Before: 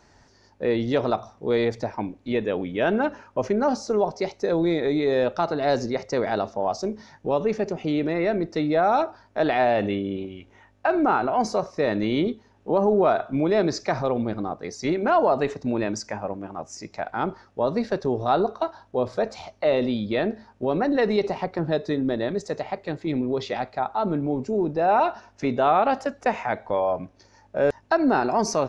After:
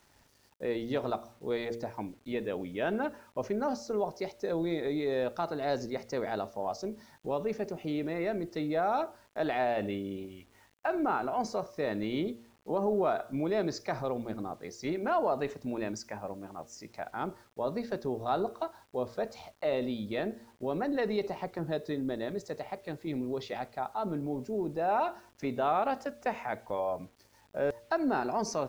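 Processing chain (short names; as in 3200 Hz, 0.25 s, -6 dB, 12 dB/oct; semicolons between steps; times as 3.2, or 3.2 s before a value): de-hum 116.7 Hz, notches 5; bit-crush 9-bit; gain -9 dB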